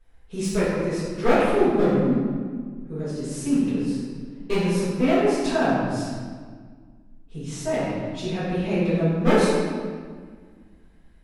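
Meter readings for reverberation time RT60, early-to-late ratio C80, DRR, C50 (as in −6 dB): 1.7 s, 0.0 dB, −12.5 dB, −2.5 dB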